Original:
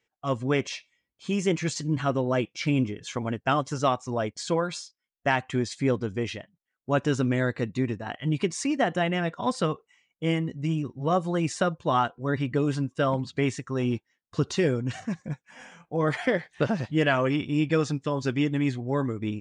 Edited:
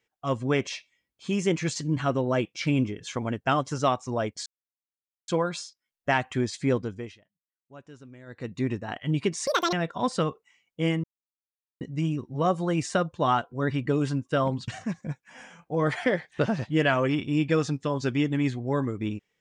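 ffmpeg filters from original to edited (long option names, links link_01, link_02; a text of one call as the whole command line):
ffmpeg -i in.wav -filter_complex "[0:a]asplit=8[link_01][link_02][link_03][link_04][link_05][link_06][link_07][link_08];[link_01]atrim=end=4.46,asetpts=PTS-STARTPTS,afade=type=out:start_time=4.456:duration=0.004:curve=hsin,apad=pad_dur=0.82[link_09];[link_02]atrim=start=4.46:end=6.36,asetpts=PTS-STARTPTS,afade=type=in:duration=0.004:curve=hsin,afade=type=out:start_time=1.47:duration=0.43:silence=0.0749894[link_10];[link_03]atrim=start=6.36:end=7.44,asetpts=PTS-STARTPTS,volume=-22.5dB[link_11];[link_04]atrim=start=7.44:end=8.654,asetpts=PTS-STARTPTS,afade=type=in:duration=0.43:silence=0.0749894[link_12];[link_05]atrim=start=8.65:end=9.16,asetpts=PTS-STARTPTS,asetrate=87318,aresample=44100,atrim=end_sample=11359,asetpts=PTS-STARTPTS[link_13];[link_06]atrim=start=9.156:end=10.47,asetpts=PTS-STARTPTS,afade=type=out:start_time=1.31:duration=0.004:curve=hsin,apad=pad_dur=0.77[link_14];[link_07]atrim=start=10.47:end=13.342,asetpts=PTS-STARTPTS,afade=type=in:duration=0.004:curve=hsin[link_15];[link_08]atrim=start=14.888[link_16];[link_09][link_10][link_11][link_12]concat=n=4:v=0:a=1[link_17];[link_17][link_13]acrossfade=duration=0.004:curve1=hsin:curve2=hsin[link_18];[link_14][link_15]concat=n=2:v=0:a=1[link_19];[link_18][link_19]acrossfade=duration=0.004:curve1=hsin:curve2=hsin[link_20];[link_20][link_16]acrossfade=duration=0.004:curve1=hsin:curve2=hsin" out.wav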